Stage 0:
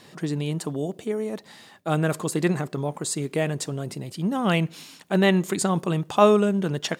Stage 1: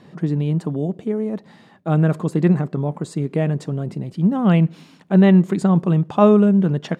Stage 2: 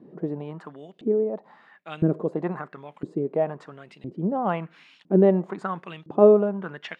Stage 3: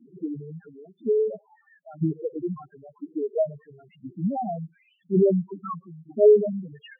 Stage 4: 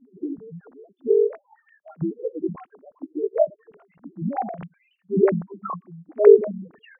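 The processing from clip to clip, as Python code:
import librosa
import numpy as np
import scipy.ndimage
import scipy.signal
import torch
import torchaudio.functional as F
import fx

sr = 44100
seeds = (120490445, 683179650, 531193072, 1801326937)

y1 = fx.lowpass(x, sr, hz=1200.0, slope=6)
y1 = fx.peak_eq(y1, sr, hz=180.0, db=7.5, octaves=1.0)
y1 = y1 * 10.0 ** (2.5 / 20.0)
y2 = fx.filter_lfo_bandpass(y1, sr, shape='saw_up', hz=0.99, low_hz=280.0, high_hz=3600.0, q=2.3)
y2 = y2 * 10.0 ** (4.0 / 20.0)
y3 = fx.spec_topn(y2, sr, count=2)
y3 = y3 * 10.0 ** (2.0 / 20.0)
y4 = fx.sine_speech(y3, sr)
y4 = y4 * 10.0 ** (2.5 / 20.0)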